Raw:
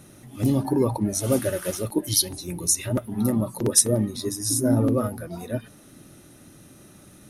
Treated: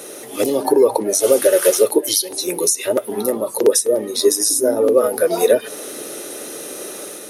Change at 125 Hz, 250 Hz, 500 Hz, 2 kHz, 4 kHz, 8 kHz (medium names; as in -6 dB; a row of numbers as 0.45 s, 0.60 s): under -15 dB, 0.0 dB, +13.5 dB, +10.5 dB, +6.5 dB, +5.5 dB